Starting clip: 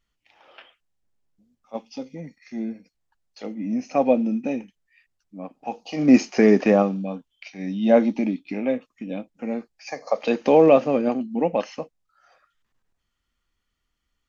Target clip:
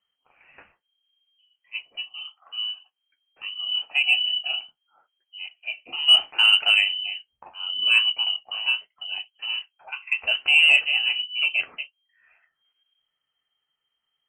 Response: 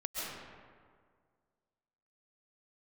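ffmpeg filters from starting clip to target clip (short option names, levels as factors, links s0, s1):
-af "lowpass=f=2700:t=q:w=0.5098,lowpass=f=2700:t=q:w=0.6013,lowpass=f=2700:t=q:w=0.9,lowpass=f=2700:t=q:w=2.563,afreqshift=-3200,flanger=delay=10:depth=4.7:regen=-43:speed=0.75:shape=sinusoidal,acontrast=33,volume=0.708"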